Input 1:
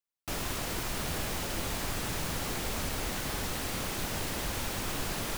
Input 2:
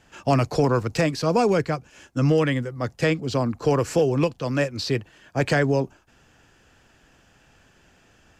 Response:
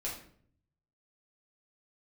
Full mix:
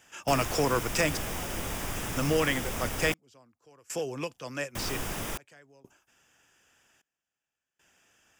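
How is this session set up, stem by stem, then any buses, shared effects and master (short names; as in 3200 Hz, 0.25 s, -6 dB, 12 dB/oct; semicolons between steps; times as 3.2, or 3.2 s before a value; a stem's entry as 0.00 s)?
0.0 dB, 0.00 s, muted 3.14–4.75, no send, dry
2.95 s -3 dB -> 3.62 s -9.5 dB, 0.00 s, no send, tilt +3 dB/oct; step gate "xxxxxx...." 77 bpm -24 dB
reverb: off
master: bell 4200 Hz -14 dB 0.21 oct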